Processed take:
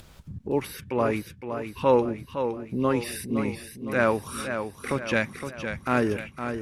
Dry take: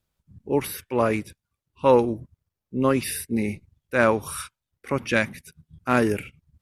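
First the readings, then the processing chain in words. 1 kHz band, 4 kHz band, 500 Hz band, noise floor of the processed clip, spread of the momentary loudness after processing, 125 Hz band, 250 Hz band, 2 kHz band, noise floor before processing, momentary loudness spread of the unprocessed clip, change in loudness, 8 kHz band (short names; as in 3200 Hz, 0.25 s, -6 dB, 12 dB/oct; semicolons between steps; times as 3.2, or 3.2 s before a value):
-2.0 dB, -2.0 dB, -2.0 dB, -50 dBFS, 10 LU, -2.0 dB, -2.0 dB, -2.5 dB, under -85 dBFS, 15 LU, -3.0 dB, -5.5 dB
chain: high shelf 9300 Hz -10.5 dB; upward compressor, threshold -23 dBFS; warbling echo 0.513 s, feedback 51%, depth 60 cents, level -8 dB; gain -3 dB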